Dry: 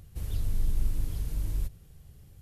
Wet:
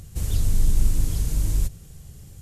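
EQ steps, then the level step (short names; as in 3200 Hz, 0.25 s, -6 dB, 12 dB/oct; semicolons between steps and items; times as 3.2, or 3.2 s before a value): bell 180 Hz +2.5 dB 1.3 oct; bell 7300 Hz +10 dB 1 oct; +8.0 dB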